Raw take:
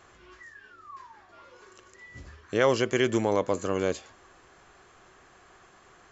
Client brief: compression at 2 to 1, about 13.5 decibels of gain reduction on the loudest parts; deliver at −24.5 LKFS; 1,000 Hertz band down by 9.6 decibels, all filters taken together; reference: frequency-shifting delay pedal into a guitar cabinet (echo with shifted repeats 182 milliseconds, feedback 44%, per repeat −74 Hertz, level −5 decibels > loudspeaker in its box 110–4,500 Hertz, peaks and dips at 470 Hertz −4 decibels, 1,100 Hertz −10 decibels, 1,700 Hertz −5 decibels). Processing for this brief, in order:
parametric band 1,000 Hz −7.5 dB
downward compressor 2 to 1, threshold −46 dBFS
echo with shifted repeats 182 ms, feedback 44%, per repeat −74 Hz, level −5 dB
loudspeaker in its box 110–4,500 Hz, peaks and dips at 470 Hz −4 dB, 1,100 Hz −10 dB, 1,700 Hz −5 dB
level +19 dB

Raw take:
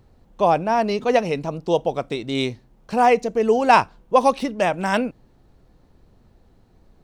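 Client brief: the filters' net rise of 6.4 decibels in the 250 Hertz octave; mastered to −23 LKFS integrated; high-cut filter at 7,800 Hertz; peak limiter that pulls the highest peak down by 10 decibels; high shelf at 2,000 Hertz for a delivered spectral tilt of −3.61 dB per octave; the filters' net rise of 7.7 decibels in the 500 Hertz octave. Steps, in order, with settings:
low-pass filter 7,800 Hz
parametric band 250 Hz +5.5 dB
parametric band 500 Hz +8 dB
high-shelf EQ 2,000 Hz −6.5 dB
level −5 dB
brickwall limiter −12 dBFS

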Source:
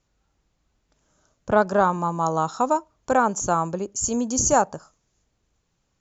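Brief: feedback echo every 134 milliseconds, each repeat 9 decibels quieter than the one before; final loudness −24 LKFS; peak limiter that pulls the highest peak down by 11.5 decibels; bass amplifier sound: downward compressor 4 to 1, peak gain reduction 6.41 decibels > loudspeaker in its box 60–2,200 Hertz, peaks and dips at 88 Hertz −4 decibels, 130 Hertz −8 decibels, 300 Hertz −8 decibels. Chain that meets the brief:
brickwall limiter −16 dBFS
repeating echo 134 ms, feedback 35%, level −9 dB
downward compressor 4 to 1, threshold −27 dBFS
loudspeaker in its box 60–2,200 Hz, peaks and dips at 88 Hz −4 dB, 130 Hz −8 dB, 300 Hz −8 dB
level +9 dB

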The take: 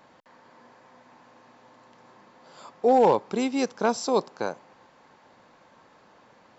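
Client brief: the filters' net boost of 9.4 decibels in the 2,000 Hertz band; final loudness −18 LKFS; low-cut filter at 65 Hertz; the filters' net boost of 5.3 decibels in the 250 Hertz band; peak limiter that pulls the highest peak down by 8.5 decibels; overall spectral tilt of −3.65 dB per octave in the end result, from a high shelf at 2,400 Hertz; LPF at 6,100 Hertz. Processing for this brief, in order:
high-pass filter 65 Hz
low-pass filter 6,100 Hz
parametric band 250 Hz +5.5 dB
parametric band 2,000 Hz +8.5 dB
high-shelf EQ 2,400 Hz +8.5 dB
level +7 dB
brickwall limiter −6.5 dBFS

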